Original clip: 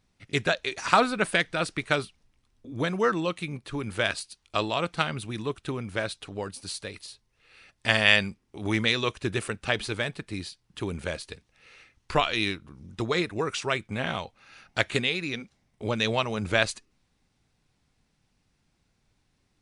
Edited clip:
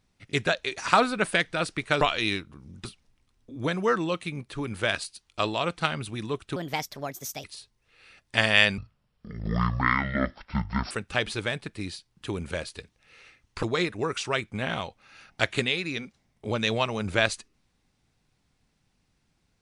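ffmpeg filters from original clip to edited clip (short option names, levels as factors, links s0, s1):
-filter_complex "[0:a]asplit=8[s0][s1][s2][s3][s4][s5][s6][s7];[s0]atrim=end=2.012[s8];[s1]atrim=start=12.158:end=13.002[s9];[s2]atrim=start=2.008:end=5.724[s10];[s3]atrim=start=5.72:end=6.95,asetpts=PTS-STARTPTS,asetrate=61740,aresample=44100[s11];[s4]atrim=start=6.946:end=8.294[s12];[s5]atrim=start=8.29:end=9.44,asetpts=PTS-STARTPTS,asetrate=23814,aresample=44100[s13];[s6]atrim=start=9.436:end=12.162[s14];[s7]atrim=start=12.998[s15];[s8][s9]acrossfade=d=0.004:c1=hsin:c2=hsin[s16];[s16][s10]acrossfade=d=0.004:c1=hsin:c2=hsin[s17];[s17][s11]acrossfade=d=0.004:c1=hsin:c2=hsin[s18];[s18][s12]acrossfade=d=0.004:c1=hsin:c2=hsin[s19];[s19][s13]acrossfade=d=0.004:c1=hsin:c2=hsin[s20];[s20][s14]acrossfade=d=0.004:c1=hsin:c2=hsin[s21];[s21][s15]acrossfade=d=0.004:c1=hsin:c2=hsin"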